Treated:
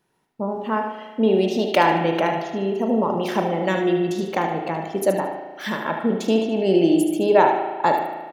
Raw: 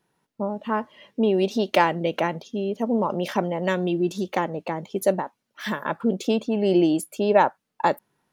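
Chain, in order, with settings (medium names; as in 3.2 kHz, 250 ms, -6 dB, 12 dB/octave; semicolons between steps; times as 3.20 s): feedback delay 75 ms, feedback 34%, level -7.5 dB; spring tank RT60 1.4 s, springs 36 ms, chirp 80 ms, DRR 3.5 dB; trim +1 dB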